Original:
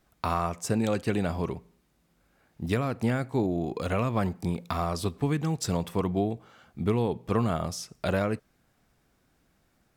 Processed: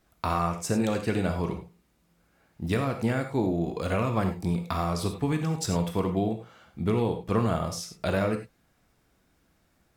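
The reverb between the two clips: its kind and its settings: non-linear reverb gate 0.12 s flat, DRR 5 dB

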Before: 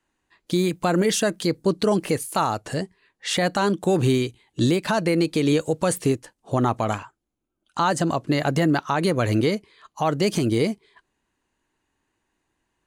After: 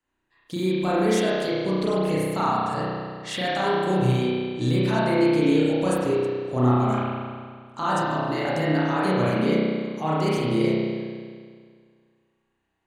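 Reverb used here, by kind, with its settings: spring tank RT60 1.9 s, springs 32 ms, chirp 20 ms, DRR -8.5 dB; gain -9.5 dB

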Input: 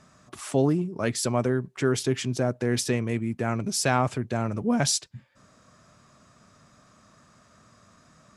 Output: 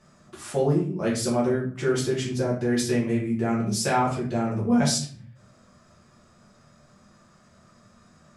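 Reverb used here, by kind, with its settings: shoebox room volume 42 m³, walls mixed, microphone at 1.1 m; gain -6.5 dB

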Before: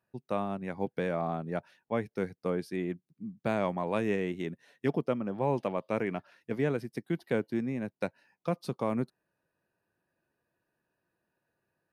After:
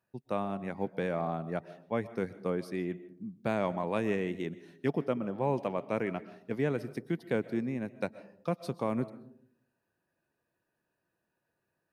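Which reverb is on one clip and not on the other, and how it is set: digital reverb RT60 0.65 s, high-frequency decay 0.3×, pre-delay 90 ms, DRR 16 dB; gain -1 dB

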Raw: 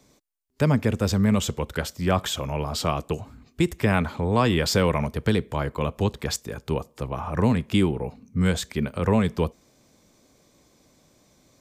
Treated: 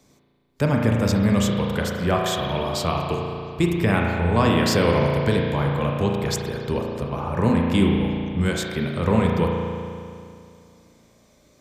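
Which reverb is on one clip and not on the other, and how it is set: spring tank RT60 2.4 s, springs 35 ms, chirp 40 ms, DRR -0.5 dB

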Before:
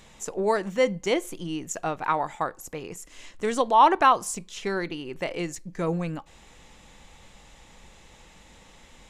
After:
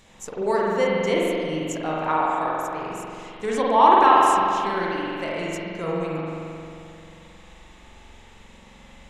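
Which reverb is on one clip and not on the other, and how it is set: spring tank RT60 2.6 s, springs 44 ms, chirp 30 ms, DRR -5 dB; gain -2.5 dB

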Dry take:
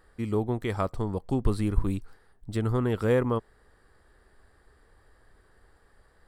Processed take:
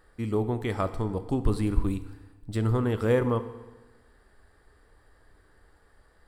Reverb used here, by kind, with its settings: FDN reverb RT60 1.2 s, low-frequency decay 1.05×, high-frequency decay 0.95×, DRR 10 dB

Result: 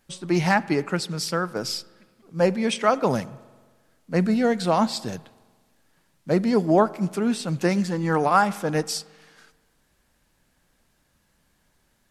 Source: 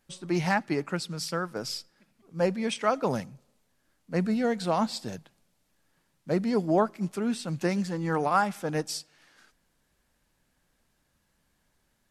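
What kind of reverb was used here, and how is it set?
spring tank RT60 1.5 s, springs 44 ms, chirp 30 ms, DRR 19.5 dB; gain +5.5 dB

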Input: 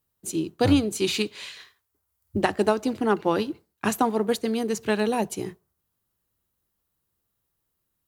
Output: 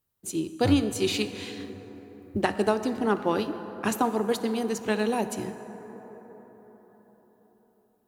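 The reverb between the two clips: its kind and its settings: plate-style reverb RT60 4.9 s, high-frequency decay 0.35×, DRR 9.5 dB; gain -2.5 dB

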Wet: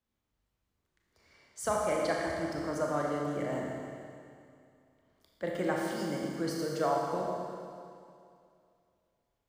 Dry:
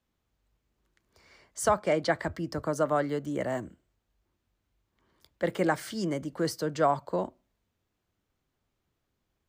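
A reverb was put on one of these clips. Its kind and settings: Schroeder reverb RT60 2.4 s, combs from 27 ms, DRR -2 dB; gain -7.5 dB

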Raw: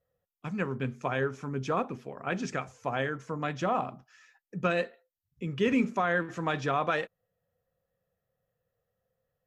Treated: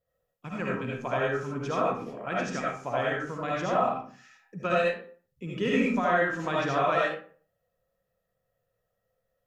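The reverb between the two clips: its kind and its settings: digital reverb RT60 0.44 s, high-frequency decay 0.65×, pre-delay 35 ms, DRR -5 dB; gain -3 dB

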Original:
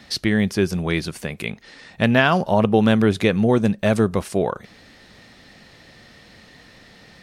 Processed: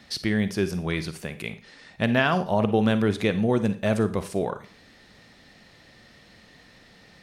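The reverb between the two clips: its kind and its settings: Schroeder reverb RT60 0.38 s, DRR 11.5 dB; gain -5.5 dB

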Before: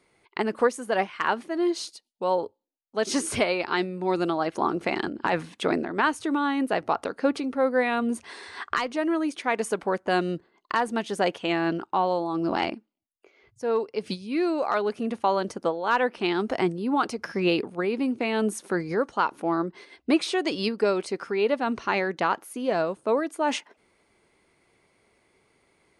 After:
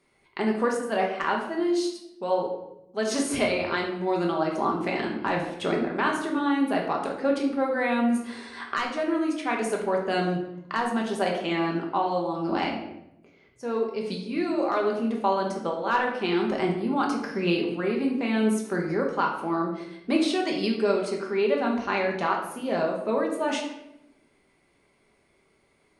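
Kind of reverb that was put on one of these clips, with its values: shoebox room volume 250 m³, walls mixed, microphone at 1.2 m; gain -4 dB

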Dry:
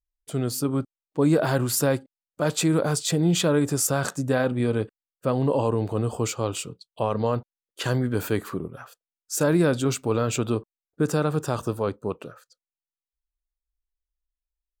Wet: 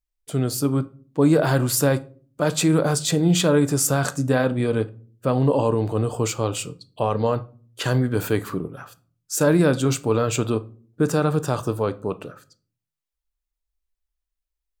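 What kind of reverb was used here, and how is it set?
shoebox room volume 320 m³, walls furnished, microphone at 0.4 m; gain +2.5 dB

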